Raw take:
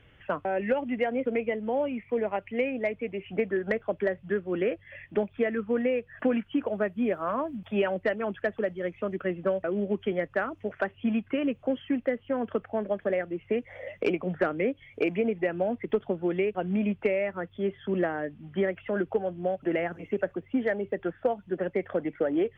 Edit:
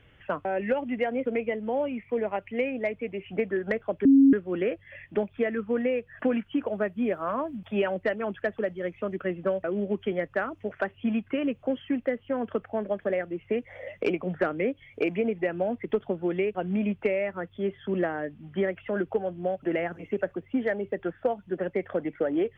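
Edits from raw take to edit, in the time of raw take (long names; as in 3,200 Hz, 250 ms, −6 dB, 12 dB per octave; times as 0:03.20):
0:04.05–0:04.33: beep over 273 Hz −13 dBFS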